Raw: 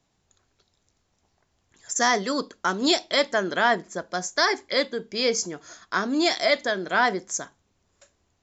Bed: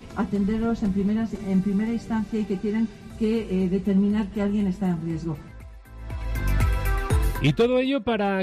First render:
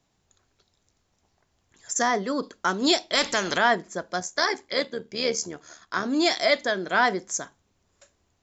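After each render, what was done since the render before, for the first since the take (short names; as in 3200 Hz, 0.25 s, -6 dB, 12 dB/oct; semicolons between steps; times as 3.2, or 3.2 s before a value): 2.02–2.43 high shelf 2300 Hz -11 dB; 3.15–3.58 spectral compressor 2:1; 4.2–6.05 AM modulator 76 Hz, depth 40%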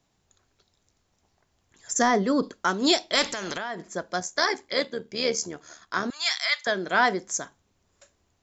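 1.91–2.54 low shelf 370 Hz +8.5 dB; 3.28–3.83 compressor 16:1, threshold -27 dBFS; 6.1–6.67 HPF 1100 Hz 24 dB/oct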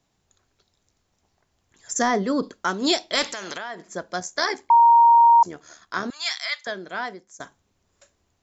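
3.23–3.89 low shelf 270 Hz -8.5 dB; 4.7–5.43 bleep 934 Hz -10 dBFS; 6.09–7.4 fade out, to -20.5 dB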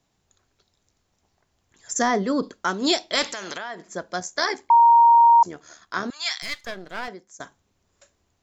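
6.42–7.08 half-wave gain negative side -12 dB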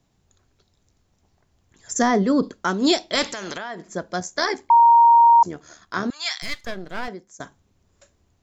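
low shelf 340 Hz +8.5 dB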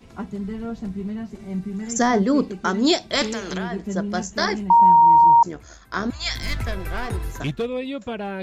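add bed -6 dB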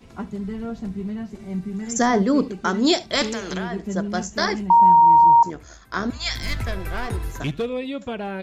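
echo 72 ms -20.5 dB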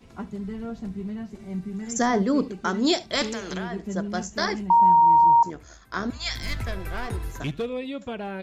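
gain -3.5 dB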